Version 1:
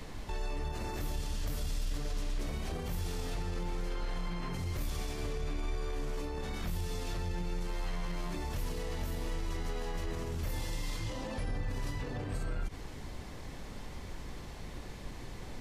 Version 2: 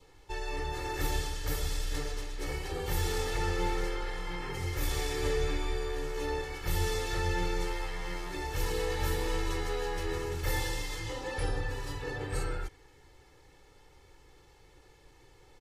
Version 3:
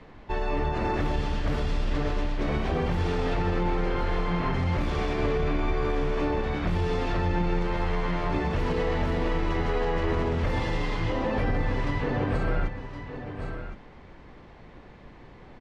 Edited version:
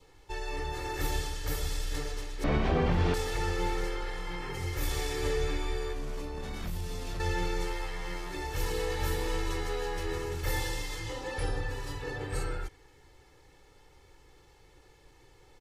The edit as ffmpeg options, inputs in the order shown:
ffmpeg -i take0.wav -i take1.wav -i take2.wav -filter_complex "[1:a]asplit=3[link_01][link_02][link_03];[link_01]atrim=end=2.442[link_04];[2:a]atrim=start=2.438:end=3.142[link_05];[link_02]atrim=start=3.138:end=5.932[link_06];[0:a]atrim=start=5.928:end=7.202[link_07];[link_03]atrim=start=7.198[link_08];[link_04][link_05]acrossfade=duration=0.004:curve1=hsin:curve2=hsin[link_09];[link_09][link_06]acrossfade=duration=0.004:curve1=hsin:curve2=hsin[link_10];[link_10][link_07]acrossfade=duration=0.004:curve1=hsin:curve2=hsin[link_11];[link_11][link_08]acrossfade=duration=0.004:curve1=hsin:curve2=hsin" out.wav

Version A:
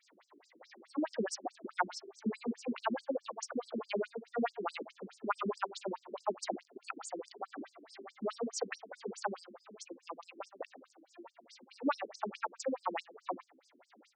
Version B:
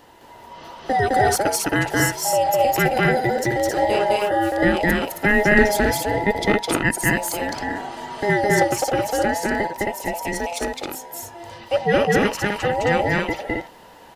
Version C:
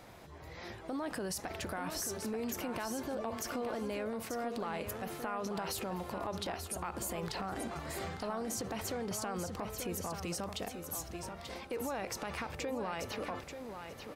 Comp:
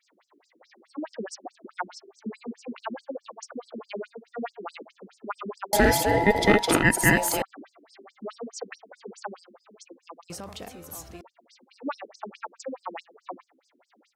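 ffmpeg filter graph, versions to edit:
ffmpeg -i take0.wav -i take1.wav -i take2.wav -filter_complex "[0:a]asplit=3[link_01][link_02][link_03];[link_01]atrim=end=5.732[link_04];[1:a]atrim=start=5.728:end=7.422[link_05];[link_02]atrim=start=7.418:end=10.302[link_06];[2:a]atrim=start=10.298:end=11.212[link_07];[link_03]atrim=start=11.208[link_08];[link_04][link_05]acrossfade=duration=0.004:curve1=hsin:curve2=hsin[link_09];[link_09][link_06]acrossfade=duration=0.004:curve1=hsin:curve2=hsin[link_10];[link_10][link_07]acrossfade=duration=0.004:curve1=hsin:curve2=hsin[link_11];[link_11][link_08]acrossfade=duration=0.004:curve1=hsin:curve2=hsin" out.wav

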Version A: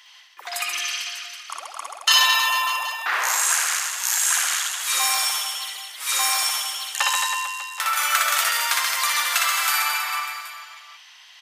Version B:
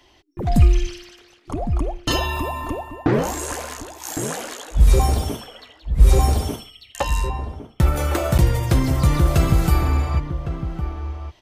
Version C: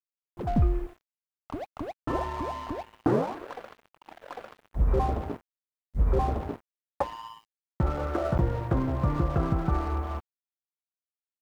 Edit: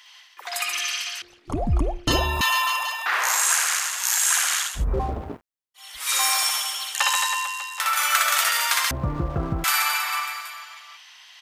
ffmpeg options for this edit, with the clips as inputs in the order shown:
ffmpeg -i take0.wav -i take1.wav -i take2.wav -filter_complex "[2:a]asplit=2[link_01][link_02];[0:a]asplit=4[link_03][link_04][link_05][link_06];[link_03]atrim=end=1.222[link_07];[1:a]atrim=start=1.218:end=2.412[link_08];[link_04]atrim=start=2.408:end=4.85[link_09];[link_01]atrim=start=4.61:end=5.98[link_10];[link_05]atrim=start=5.74:end=8.912[link_11];[link_02]atrim=start=8.908:end=9.642[link_12];[link_06]atrim=start=9.638[link_13];[link_07][link_08]acrossfade=duration=0.004:curve1=hsin:curve2=hsin[link_14];[link_14][link_09]acrossfade=duration=0.004:curve1=hsin:curve2=hsin[link_15];[link_15][link_10]acrossfade=duration=0.24:curve1=tri:curve2=tri[link_16];[link_16][link_11]acrossfade=duration=0.24:curve1=tri:curve2=tri[link_17];[link_17][link_12]acrossfade=duration=0.004:curve1=hsin:curve2=hsin[link_18];[link_18][link_13]acrossfade=duration=0.004:curve1=hsin:curve2=hsin" out.wav

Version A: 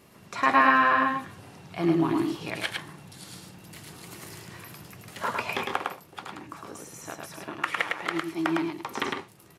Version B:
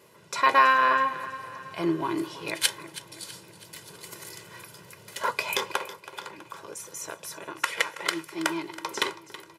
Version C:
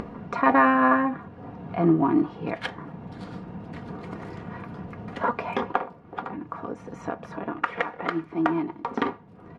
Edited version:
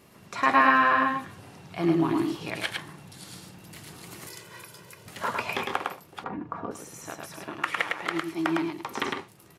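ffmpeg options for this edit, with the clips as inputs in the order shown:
ffmpeg -i take0.wav -i take1.wav -i take2.wav -filter_complex "[0:a]asplit=3[link_01][link_02][link_03];[link_01]atrim=end=4.272[link_04];[1:a]atrim=start=4.268:end=5.062[link_05];[link_02]atrim=start=5.058:end=6.242[link_06];[2:a]atrim=start=6.238:end=6.712[link_07];[link_03]atrim=start=6.708[link_08];[link_04][link_05]acrossfade=duration=0.004:curve1=hsin:curve2=hsin[link_09];[link_09][link_06]acrossfade=duration=0.004:curve1=hsin:curve2=hsin[link_10];[link_10][link_07]acrossfade=duration=0.004:curve1=hsin:curve2=hsin[link_11];[link_11][link_08]acrossfade=duration=0.004:curve1=hsin:curve2=hsin" out.wav

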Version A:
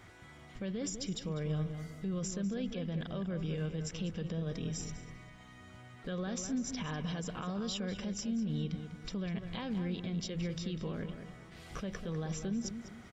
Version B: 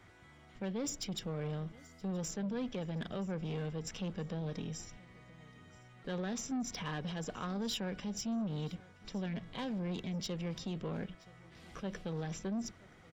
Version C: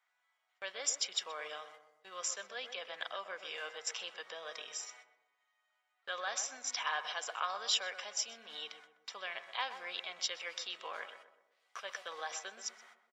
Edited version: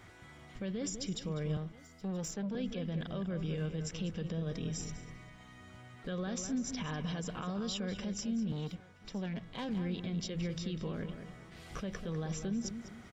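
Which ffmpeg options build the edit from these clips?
ffmpeg -i take0.wav -i take1.wav -filter_complex "[1:a]asplit=2[link_01][link_02];[0:a]asplit=3[link_03][link_04][link_05];[link_03]atrim=end=1.572[link_06];[link_01]atrim=start=1.568:end=2.552[link_07];[link_04]atrim=start=2.548:end=8.522[link_08];[link_02]atrim=start=8.518:end=9.692[link_09];[link_05]atrim=start=9.688[link_10];[link_06][link_07]acrossfade=duration=0.004:curve1=hsin:curve2=hsin[link_11];[link_11][link_08]acrossfade=duration=0.004:curve1=hsin:curve2=hsin[link_12];[link_12][link_09]acrossfade=duration=0.004:curve1=hsin:curve2=hsin[link_13];[link_13][link_10]acrossfade=duration=0.004:curve1=hsin:curve2=hsin" out.wav

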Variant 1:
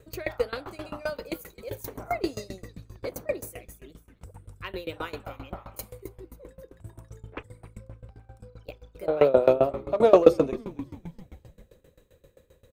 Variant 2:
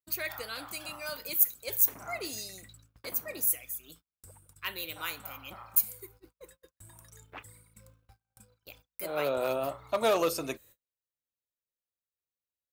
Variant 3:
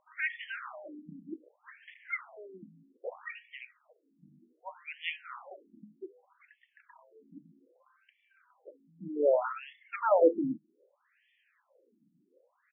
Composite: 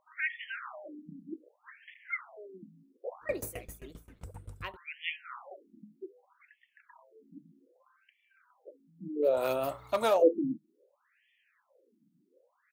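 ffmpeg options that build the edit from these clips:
ffmpeg -i take0.wav -i take1.wav -i take2.wav -filter_complex "[2:a]asplit=3[link_01][link_02][link_03];[link_01]atrim=end=3.37,asetpts=PTS-STARTPTS[link_04];[0:a]atrim=start=3.21:end=4.77,asetpts=PTS-STARTPTS[link_05];[link_02]atrim=start=4.61:end=9.46,asetpts=PTS-STARTPTS[link_06];[1:a]atrim=start=9.22:end=10.24,asetpts=PTS-STARTPTS[link_07];[link_03]atrim=start=10,asetpts=PTS-STARTPTS[link_08];[link_04][link_05]acrossfade=duration=0.16:curve1=tri:curve2=tri[link_09];[link_09][link_06]acrossfade=duration=0.16:curve1=tri:curve2=tri[link_10];[link_10][link_07]acrossfade=duration=0.24:curve1=tri:curve2=tri[link_11];[link_11][link_08]acrossfade=duration=0.24:curve1=tri:curve2=tri" out.wav

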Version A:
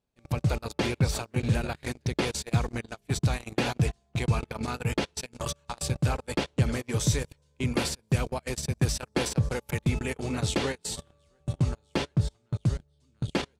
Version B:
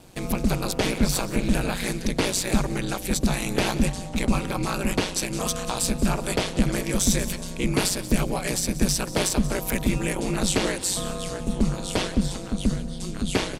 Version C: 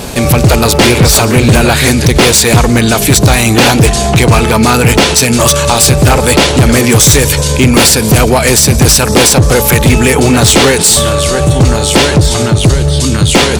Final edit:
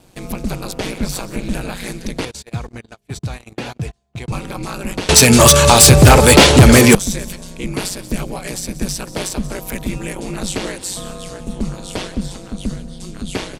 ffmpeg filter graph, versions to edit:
ffmpeg -i take0.wav -i take1.wav -i take2.wav -filter_complex "[1:a]asplit=3[link_01][link_02][link_03];[link_01]atrim=end=2.252[link_04];[0:a]atrim=start=2.248:end=4.322[link_05];[link_02]atrim=start=4.318:end=5.092[link_06];[2:a]atrim=start=5.088:end=6.952[link_07];[link_03]atrim=start=6.948[link_08];[link_04][link_05]acrossfade=duration=0.004:curve1=hsin:curve2=hsin[link_09];[link_09][link_06]acrossfade=duration=0.004:curve1=hsin:curve2=hsin[link_10];[link_10][link_07]acrossfade=duration=0.004:curve1=hsin:curve2=hsin[link_11];[link_11][link_08]acrossfade=duration=0.004:curve1=hsin:curve2=hsin" out.wav

